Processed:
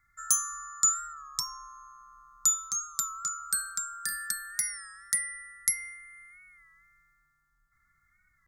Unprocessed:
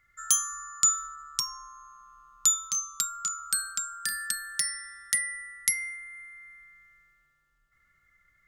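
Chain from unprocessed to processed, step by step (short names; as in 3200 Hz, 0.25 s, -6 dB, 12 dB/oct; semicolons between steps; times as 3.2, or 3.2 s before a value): fixed phaser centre 1200 Hz, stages 4; record warp 33 1/3 rpm, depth 100 cents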